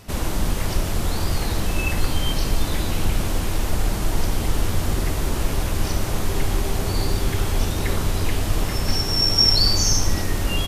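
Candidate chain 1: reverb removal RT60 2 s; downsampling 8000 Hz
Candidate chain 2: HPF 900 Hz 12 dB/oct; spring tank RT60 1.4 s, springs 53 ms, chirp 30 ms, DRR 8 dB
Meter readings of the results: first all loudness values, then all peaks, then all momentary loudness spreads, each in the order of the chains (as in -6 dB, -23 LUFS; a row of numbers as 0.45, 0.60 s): -29.0, -25.0 LUFS; -8.0, -6.0 dBFS; 2, 13 LU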